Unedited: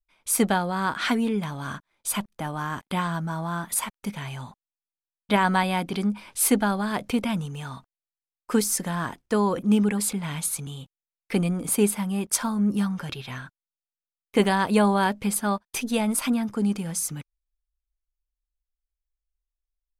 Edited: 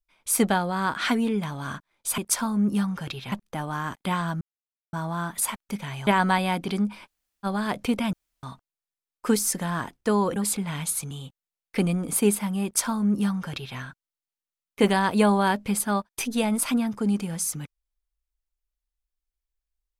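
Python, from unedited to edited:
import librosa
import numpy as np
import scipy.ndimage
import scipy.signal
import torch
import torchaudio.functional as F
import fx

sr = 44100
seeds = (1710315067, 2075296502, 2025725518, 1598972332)

y = fx.edit(x, sr, fx.insert_silence(at_s=3.27, length_s=0.52),
    fx.cut(start_s=4.41, length_s=0.91),
    fx.room_tone_fill(start_s=6.31, length_s=0.39, crossfade_s=0.04),
    fx.room_tone_fill(start_s=7.38, length_s=0.3),
    fx.cut(start_s=9.61, length_s=0.31),
    fx.duplicate(start_s=12.2, length_s=1.14, to_s=2.18), tone=tone)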